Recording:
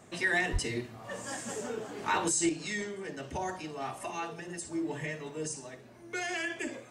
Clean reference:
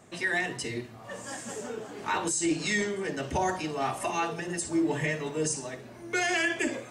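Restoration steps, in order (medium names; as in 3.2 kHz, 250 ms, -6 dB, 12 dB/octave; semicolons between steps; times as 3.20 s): 0.52–0.64 s: high-pass 140 Hz 24 dB/octave; trim 0 dB, from 2.49 s +7.5 dB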